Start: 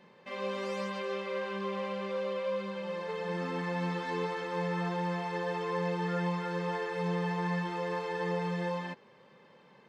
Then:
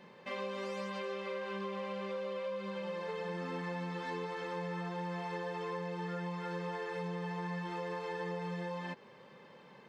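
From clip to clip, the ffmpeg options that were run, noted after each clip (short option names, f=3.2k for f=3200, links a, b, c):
-af "acompressor=threshold=-39dB:ratio=6,volume=2.5dB"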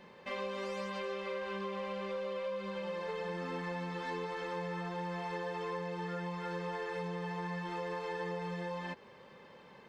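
-af "lowshelf=f=100:t=q:w=1.5:g=8,volume=1dB"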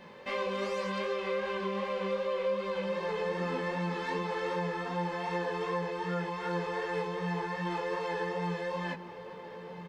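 -filter_complex "[0:a]flanger=delay=17:depth=4.1:speed=2.6,asplit=2[a][b];[b]adelay=1341,volume=-11dB,highshelf=f=4k:g=-30.2[c];[a][c]amix=inputs=2:normalize=0,volume=8dB"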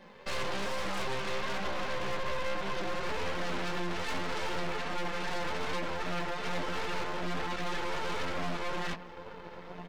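-af "aeval=exprs='0.0841*(cos(1*acos(clip(val(0)/0.0841,-1,1)))-cos(1*PI/2))+0.0422*(cos(6*acos(clip(val(0)/0.0841,-1,1)))-cos(6*PI/2))':c=same,flanger=delay=3.6:depth=2.3:regen=-44:speed=1.2:shape=sinusoidal,asoftclip=type=hard:threshold=-26.5dB"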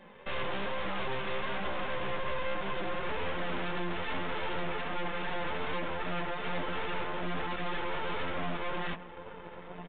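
-af "aresample=8000,aresample=44100"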